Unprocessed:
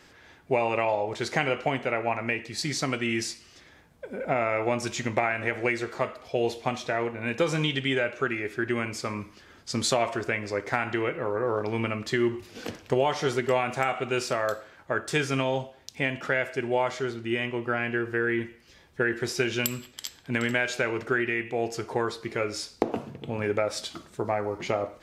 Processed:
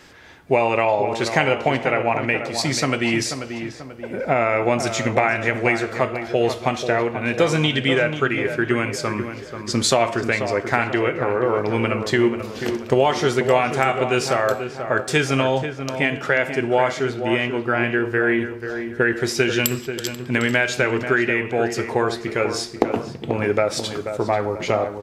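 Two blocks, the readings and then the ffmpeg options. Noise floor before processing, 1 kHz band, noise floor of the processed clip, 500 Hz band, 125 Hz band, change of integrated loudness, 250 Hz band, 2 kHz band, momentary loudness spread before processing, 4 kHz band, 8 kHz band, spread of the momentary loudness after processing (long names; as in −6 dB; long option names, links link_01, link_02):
−55 dBFS, +7.5 dB, −36 dBFS, +7.5 dB, +8.0 dB, +7.5 dB, +8.0 dB, +7.5 dB, 8 LU, +7.0 dB, +7.0 dB, 7 LU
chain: -filter_complex "[0:a]asplit=2[link_01][link_02];[link_02]adelay=487,lowpass=frequency=1700:poles=1,volume=-8dB,asplit=2[link_03][link_04];[link_04]adelay=487,lowpass=frequency=1700:poles=1,volume=0.48,asplit=2[link_05][link_06];[link_06]adelay=487,lowpass=frequency=1700:poles=1,volume=0.48,asplit=2[link_07][link_08];[link_08]adelay=487,lowpass=frequency=1700:poles=1,volume=0.48,asplit=2[link_09][link_10];[link_10]adelay=487,lowpass=frequency=1700:poles=1,volume=0.48,asplit=2[link_11][link_12];[link_12]adelay=487,lowpass=frequency=1700:poles=1,volume=0.48[link_13];[link_01][link_03][link_05][link_07][link_09][link_11][link_13]amix=inputs=7:normalize=0,volume=7dB"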